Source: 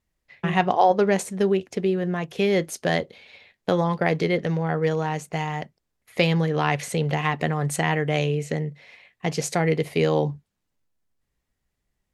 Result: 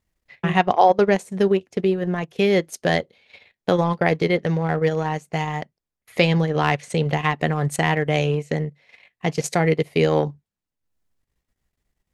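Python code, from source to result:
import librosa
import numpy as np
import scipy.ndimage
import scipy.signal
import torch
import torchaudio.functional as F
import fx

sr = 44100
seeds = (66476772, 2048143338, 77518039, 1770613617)

y = fx.lowpass(x, sr, hz=10000.0, slope=24, at=(6.2, 7.04))
y = fx.transient(y, sr, attack_db=0, sustain_db=-12)
y = F.gain(torch.from_numpy(y), 3.0).numpy()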